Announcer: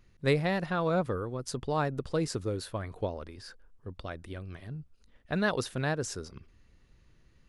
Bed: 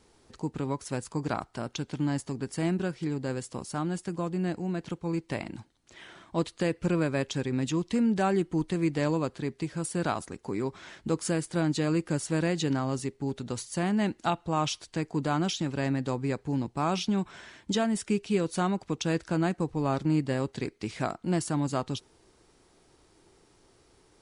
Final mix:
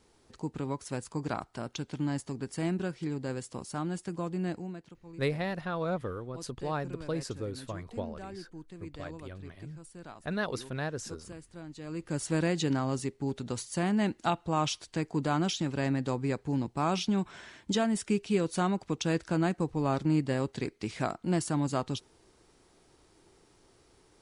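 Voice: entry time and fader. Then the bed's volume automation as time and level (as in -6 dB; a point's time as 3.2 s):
4.95 s, -4.0 dB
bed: 4.55 s -3 dB
4.95 s -18 dB
11.75 s -18 dB
12.23 s -1 dB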